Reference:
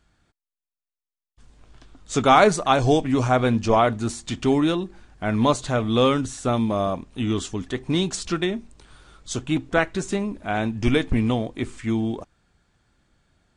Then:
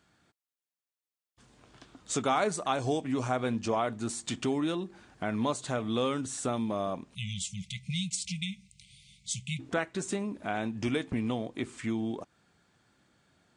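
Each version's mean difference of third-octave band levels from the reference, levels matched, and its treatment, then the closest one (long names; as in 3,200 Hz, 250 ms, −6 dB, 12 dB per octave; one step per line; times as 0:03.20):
5.0 dB: high-pass filter 130 Hz 12 dB per octave
time-frequency box erased 0:07.15–0:09.60, 210–2,000 Hz
dynamic equaliser 8,400 Hz, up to +6 dB, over −50 dBFS, Q 2.5
downward compressor 2 to 1, threshold −35 dBFS, peak gain reduction 13.5 dB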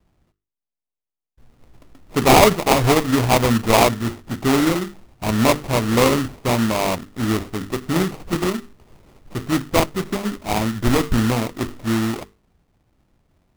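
9.0 dB: mains-hum notches 50/100/150/200/250/300/350/400/450 Hz
low-pass that shuts in the quiet parts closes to 1,400 Hz, open at −16.5 dBFS
moving average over 5 samples
sample-rate reduction 1,600 Hz, jitter 20%
level +3.5 dB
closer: first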